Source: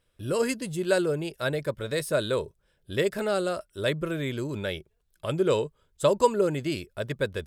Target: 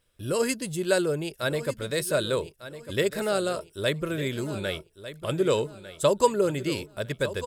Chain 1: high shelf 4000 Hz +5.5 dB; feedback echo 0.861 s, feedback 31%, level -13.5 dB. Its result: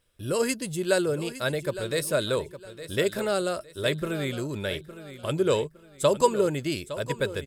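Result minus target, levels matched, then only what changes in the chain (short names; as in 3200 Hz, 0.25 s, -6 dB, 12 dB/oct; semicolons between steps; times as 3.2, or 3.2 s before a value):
echo 0.339 s early
change: feedback echo 1.2 s, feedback 31%, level -13.5 dB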